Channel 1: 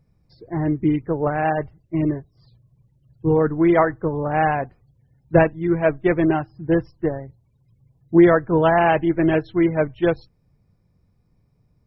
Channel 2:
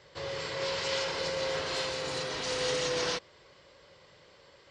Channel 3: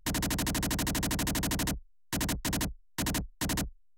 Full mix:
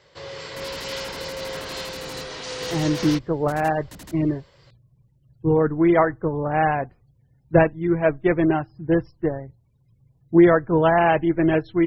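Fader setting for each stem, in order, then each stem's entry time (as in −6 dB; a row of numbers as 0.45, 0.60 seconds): −1.0, +0.5, −11.0 decibels; 2.20, 0.00, 0.50 seconds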